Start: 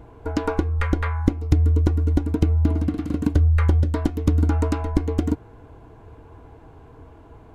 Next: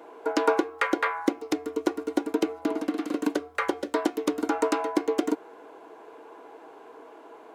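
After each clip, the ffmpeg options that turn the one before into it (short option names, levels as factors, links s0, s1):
-af "highpass=f=350:w=0.5412,highpass=f=350:w=1.3066,volume=1.58"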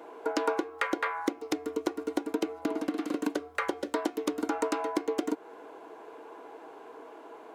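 -af "acompressor=threshold=0.0355:ratio=2"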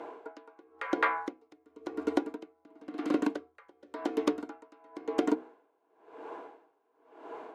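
-af "aemphasis=mode=reproduction:type=50fm,bandreject=f=63.82:t=h:w=4,bandreject=f=127.64:t=h:w=4,bandreject=f=191.46:t=h:w=4,bandreject=f=255.28:t=h:w=4,bandreject=f=319.1:t=h:w=4,bandreject=f=382.92:t=h:w=4,bandreject=f=446.74:t=h:w=4,bandreject=f=510.56:t=h:w=4,aeval=exprs='val(0)*pow(10,-32*(0.5-0.5*cos(2*PI*0.95*n/s))/20)':c=same,volume=1.68"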